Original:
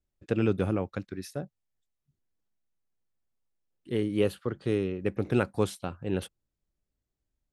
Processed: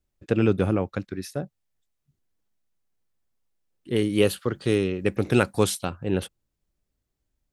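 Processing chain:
0:03.96–0:05.90: high-shelf EQ 2,800 Hz +10 dB
level +5 dB

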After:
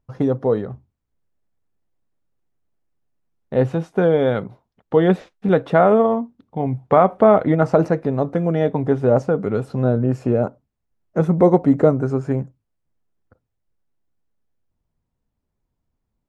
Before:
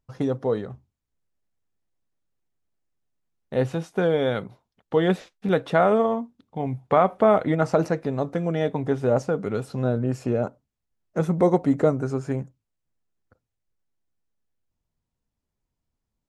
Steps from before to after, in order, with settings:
high-shelf EQ 2,400 Hz −12 dB
level +6 dB

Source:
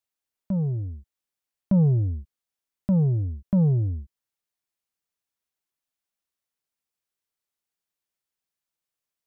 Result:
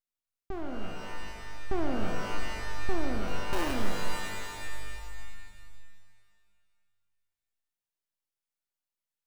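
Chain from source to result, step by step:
0:03.28–0:03.73: samples sorted by size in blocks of 32 samples
full-wave rectification
reverb with rising layers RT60 2.2 s, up +12 semitones, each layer −2 dB, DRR 2.5 dB
level −5.5 dB

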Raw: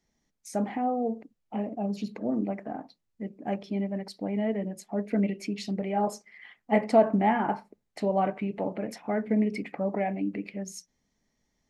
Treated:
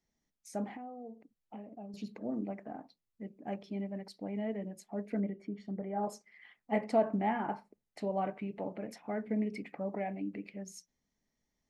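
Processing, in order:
0:00.72–0:01.94: downward compressor 4 to 1, threshold −37 dBFS, peak gain reduction 11 dB
0:05.20–0:06.03: Savitzky-Golay smoothing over 41 samples
level −8 dB

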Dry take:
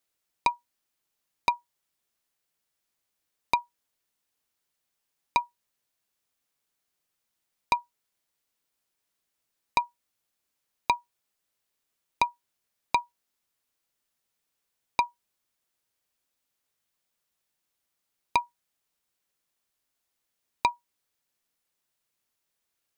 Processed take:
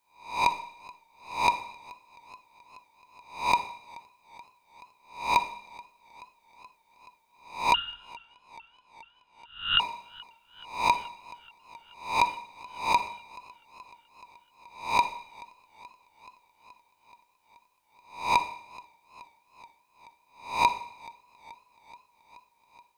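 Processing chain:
peak hold with a rise ahead of every peak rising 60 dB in 0.45 s
hum removal 103.7 Hz, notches 38
on a send at −11 dB: convolution reverb RT60 0.70 s, pre-delay 39 ms
0:07.74–0:09.80: on the sum: voice inversion scrambler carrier 3,800 Hz
feedback echo with a swinging delay time 428 ms, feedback 75%, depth 51 cents, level −23 dB

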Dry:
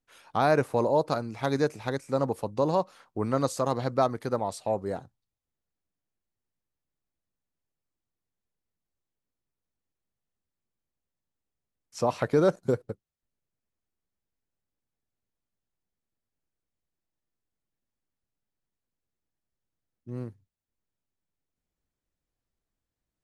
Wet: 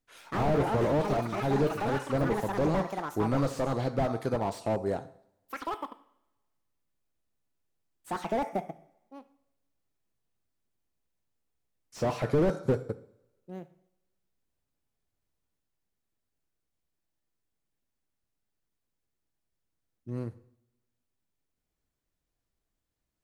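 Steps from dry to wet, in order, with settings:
delay with pitch and tempo change per echo 87 ms, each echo +7 semitones, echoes 2, each echo −6 dB
coupled-rooms reverb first 0.59 s, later 1.5 s, from −22 dB, DRR 12 dB
slew-rate limiting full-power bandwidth 28 Hz
level +1.5 dB

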